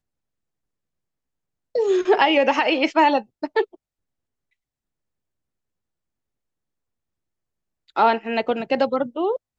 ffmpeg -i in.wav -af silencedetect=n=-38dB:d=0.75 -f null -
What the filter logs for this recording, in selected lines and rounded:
silence_start: 0.00
silence_end: 1.75 | silence_duration: 1.75
silence_start: 3.75
silence_end: 7.96 | silence_duration: 4.22